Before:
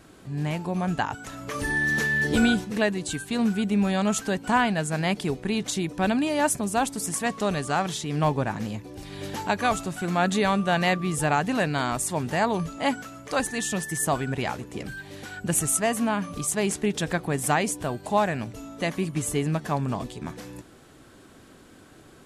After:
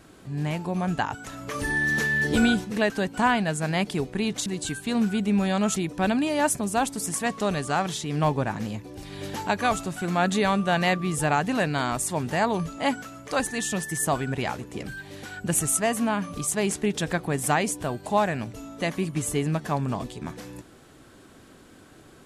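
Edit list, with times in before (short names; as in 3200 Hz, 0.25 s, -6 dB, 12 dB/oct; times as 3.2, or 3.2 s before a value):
2.9–4.2 move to 5.76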